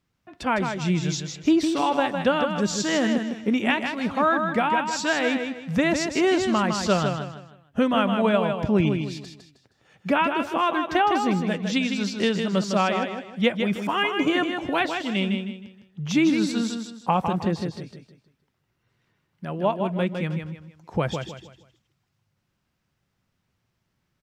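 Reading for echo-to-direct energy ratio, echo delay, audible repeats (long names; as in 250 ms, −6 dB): −5.5 dB, 157 ms, 4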